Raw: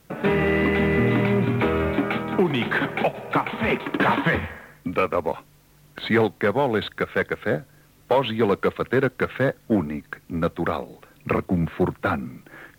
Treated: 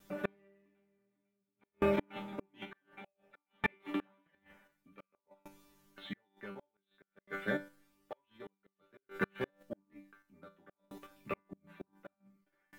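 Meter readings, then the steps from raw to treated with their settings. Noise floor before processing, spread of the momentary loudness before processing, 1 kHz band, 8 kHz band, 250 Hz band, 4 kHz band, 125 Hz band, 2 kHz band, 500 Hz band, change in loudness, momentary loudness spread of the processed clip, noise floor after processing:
-55 dBFS, 11 LU, -21.0 dB, n/a, -20.0 dB, -20.5 dB, -24.5 dB, -18.0 dB, -19.5 dB, -17.0 dB, 23 LU, under -85 dBFS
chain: resonator bank G3 fifth, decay 0.34 s; de-hum 169.1 Hz, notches 3; flipped gate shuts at -29 dBFS, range -34 dB; in parallel at 0 dB: level quantiser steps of 21 dB; on the sum: dB-ramp tremolo decaying 0.55 Hz, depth 33 dB; gain +7.5 dB

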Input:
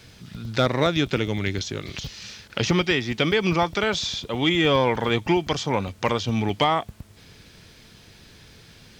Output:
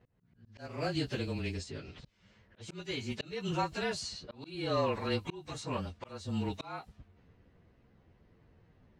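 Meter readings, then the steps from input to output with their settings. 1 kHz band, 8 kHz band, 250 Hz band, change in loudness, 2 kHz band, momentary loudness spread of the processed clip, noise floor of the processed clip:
-14.0 dB, -12.0 dB, -13.5 dB, -13.5 dB, -16.0 dB, 14 LU, -67 dBFS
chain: inharmonic rescaling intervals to 108%; low-pass opened by the level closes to 1100 Hz, open at -23.5 dBFS; auto swell 0.358 s; gain -8.5 dB

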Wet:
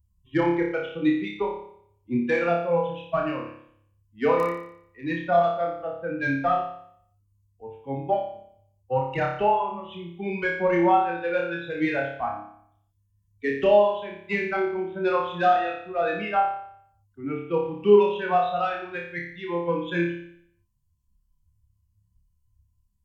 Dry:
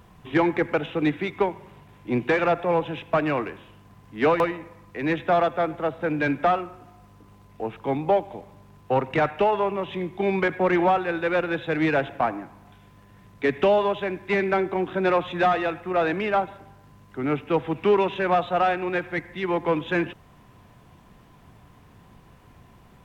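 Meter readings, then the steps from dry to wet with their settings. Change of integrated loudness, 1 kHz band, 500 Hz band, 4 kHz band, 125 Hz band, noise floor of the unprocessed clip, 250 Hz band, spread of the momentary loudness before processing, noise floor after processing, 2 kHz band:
-1.0 dB, -0.5 dB, -0.5 dB, -3.5 dB, -3.0 dB, -53 dBFS, -2.0 dB, 10 LU, -69 dBFS, -2.0 dB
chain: per-bin expansion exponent 2; flutter echo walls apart 5 m, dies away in 0.65 s

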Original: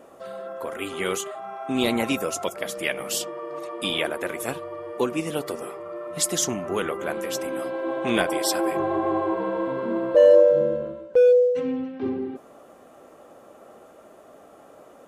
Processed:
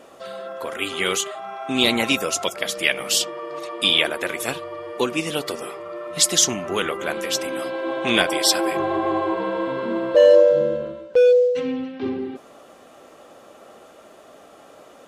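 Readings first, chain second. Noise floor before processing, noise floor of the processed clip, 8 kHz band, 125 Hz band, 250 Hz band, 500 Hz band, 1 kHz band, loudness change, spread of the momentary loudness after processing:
-50 dBFS, -48 dBFS, +6.5 dB, +1.0 dB, +1.0 dB, +1.5 dB, +3.0 dB, +3.5 dB, 16 LU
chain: bell 3900 Hz +10 dB 2.1 oct; gain +1 dB

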